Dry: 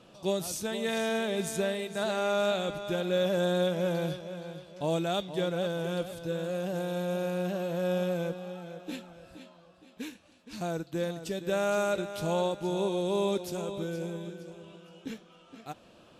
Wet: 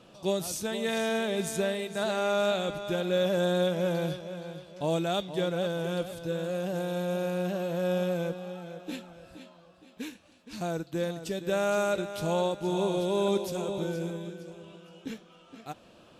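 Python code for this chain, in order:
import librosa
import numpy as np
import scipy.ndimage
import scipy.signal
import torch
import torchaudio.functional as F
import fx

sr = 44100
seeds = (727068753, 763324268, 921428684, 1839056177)

y = fx.reverse_delay(x, sr, ms=676, wet_db=-9.0, at=(11.93, 14.11))
y = F.gain(torch.from_numpy(y), 1.0).numpy()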